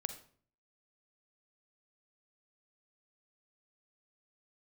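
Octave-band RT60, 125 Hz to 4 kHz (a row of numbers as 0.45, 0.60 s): 0.75, 0.65, 0.55, 0.45, 0.40, 0.40 s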